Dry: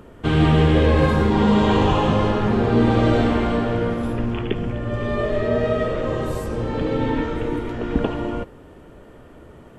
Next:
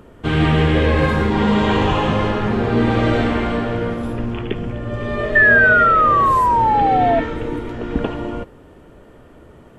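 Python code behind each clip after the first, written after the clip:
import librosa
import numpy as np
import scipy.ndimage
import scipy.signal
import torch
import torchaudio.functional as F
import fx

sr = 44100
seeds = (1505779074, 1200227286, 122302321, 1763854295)

y = fx.spec_paint(x, sr, seeds[0], shape='fall', start_s=5.35, length_s=1.85, low_hz=660.0, high_hz=1800.0, level_db=-16.0)
y = fx.dynamic_eq(y, sr, hz=2000.0, q=1.2, threshold_db=-34.0, ratio=4.0, max_db=6)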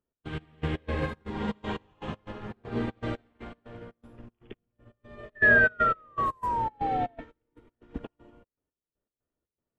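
y = fx.step_gate(x, sr, bpm=119, pattern='x.x..x.xx.x', floor_db=-12.0, edge_ms=4.5)
y = fx.upward_expand(y, sr, threshold_db=-35.0, expansion=2.5)
y = y * 10.0 ** (-7.0 / 20.0)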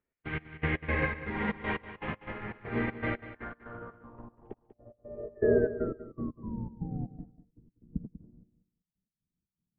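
y = fx.filter_sweep_lowpass(x, sr, from_hz=2100.0, to_hz=180.0, start_s=3.11, end_s=6.78, q=4.4)
y = fx.echo_feedback(y, sr, ms=193, feedback_pct=19, wet_db=-13.5)
y = y * 10.0 ** (-1.5 / 20.0)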